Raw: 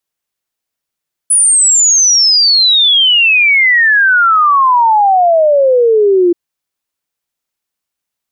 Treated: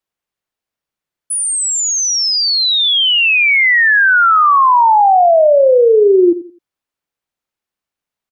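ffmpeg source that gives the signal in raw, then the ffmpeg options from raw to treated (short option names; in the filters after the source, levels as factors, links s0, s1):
-f lavfi -i "aevalsrc='0.531*clip(min(t,5.03-t)/0.01,0,1)*sin(2*PI*10000*5.03/log(340/10000)*(exp(log(340/10000)*t/5.03)-1))':d=5.03:s=44100"
-filter_complex "[0:a]highshelf=f=4000:g=-10,asplit=2[s0][s1];[s1]adelay=86,lowpass=f=1800:p=1,volume=0.211,asplit=2[s2][s3];[s3]adelay=86,lowpass=f=1800:p=1,volume=0.28,asplit=2[s4][s5];[s5]adelay=86,lowpass=f=1800:p=1,volume=0.28[s6];[s0][s2][s4][s6]amix=inputs=4:normalize=0"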